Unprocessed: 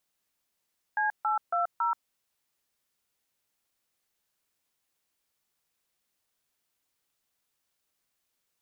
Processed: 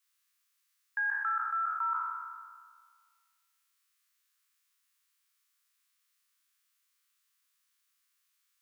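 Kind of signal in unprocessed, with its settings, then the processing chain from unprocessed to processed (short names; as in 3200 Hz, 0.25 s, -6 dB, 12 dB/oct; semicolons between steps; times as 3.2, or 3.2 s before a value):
DTMF "C820", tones 0.131 s, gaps 0.146 s, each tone -27 dBFS
spectral trails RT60 1.73 s; Chebyshev high-pass 1100 Hz, order 5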